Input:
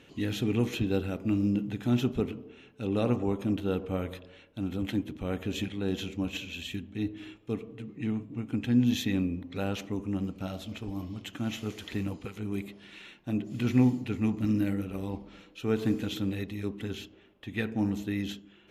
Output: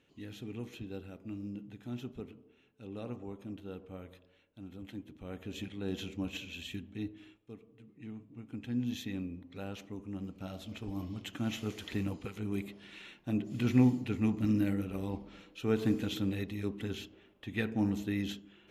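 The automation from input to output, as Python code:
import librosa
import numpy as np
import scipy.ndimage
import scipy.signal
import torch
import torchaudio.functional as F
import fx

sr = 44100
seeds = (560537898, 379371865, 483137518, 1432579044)

y = fx.gain(x, sr, db=fx.line((4.9, -14.5), (6.0, -5.0), (6.93, -5.0), (7.57, -17.0), (8.79, -10.0), (10.05, -10.0), (11.03, -2.0)))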